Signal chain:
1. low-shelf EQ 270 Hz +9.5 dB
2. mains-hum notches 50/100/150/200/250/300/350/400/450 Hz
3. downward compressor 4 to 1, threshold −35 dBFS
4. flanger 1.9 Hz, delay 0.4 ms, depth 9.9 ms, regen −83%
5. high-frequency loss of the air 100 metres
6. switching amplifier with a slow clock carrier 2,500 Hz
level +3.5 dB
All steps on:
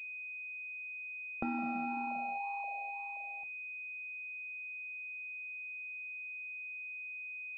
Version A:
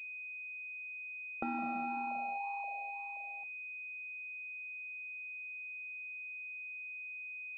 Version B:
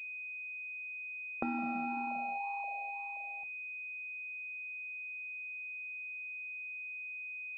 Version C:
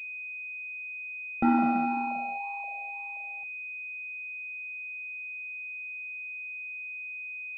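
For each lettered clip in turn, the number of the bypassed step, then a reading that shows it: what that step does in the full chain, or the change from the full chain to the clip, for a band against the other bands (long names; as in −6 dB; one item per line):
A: 1, 250 Hz band −3.0 dB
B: 5, change in crest factor +1.5 dB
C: 3, change in momentary loudness spread +5 LU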